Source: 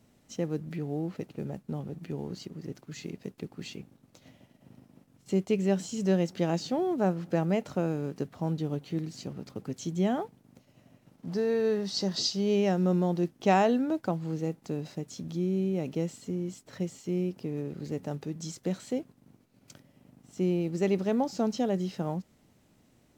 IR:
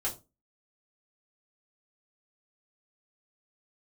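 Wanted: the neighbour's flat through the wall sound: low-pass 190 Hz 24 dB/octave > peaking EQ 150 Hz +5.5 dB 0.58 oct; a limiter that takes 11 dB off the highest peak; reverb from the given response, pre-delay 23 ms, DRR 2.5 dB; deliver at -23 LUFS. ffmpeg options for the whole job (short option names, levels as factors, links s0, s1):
-filter_complex "[0:a]alimiter=limit=0.0794:level=0:latency=1,asplit=2[s0][s1];[1:a]atrim=start_sample=2205,adelay=23[s2];[s1][s2]afir=irnorm=-1:irlink=0,volume=0.473[s3];[s0][s3]amix=inputs=2:normalize=0,lowpass=f=190:w=0.5412,lowpass=f=190:w=1.3066,equalizer=f=150:t=o:w=0.58:g=5.5,volume=3.76"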